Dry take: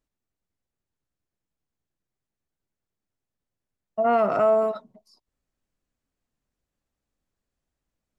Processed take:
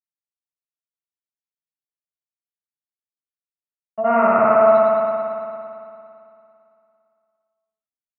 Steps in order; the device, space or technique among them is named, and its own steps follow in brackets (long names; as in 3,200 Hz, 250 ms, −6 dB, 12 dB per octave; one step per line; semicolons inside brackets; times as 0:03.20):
hearing-loss simulation (low-pass filter 2,700 Hz 12 dB per octave; downward expander −53 dBFS)
0:04.08–0:04.61: elliptic low-pass filter 2,500 Hz, stop band 40 dB
high-pass filter 250 Hz 6 dB per octave
parametric band 430 Hz −8 dB 1.5 octaves
spring reverb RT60 2.6 s, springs 56 ms, chirp 70 ms, DRR −6.5 dB
level +5.5 dB